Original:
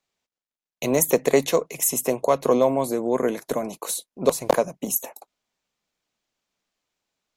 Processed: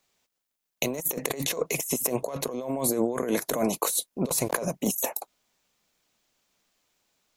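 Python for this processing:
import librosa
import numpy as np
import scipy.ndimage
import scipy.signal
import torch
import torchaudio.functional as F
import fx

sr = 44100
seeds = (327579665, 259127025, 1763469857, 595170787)

y = fx.high_shelf(x, sr, hz=8500.0, db=8.0)
y = fx.over_compress(y, sr, threshold_db=-29.0, ratio=-1.0)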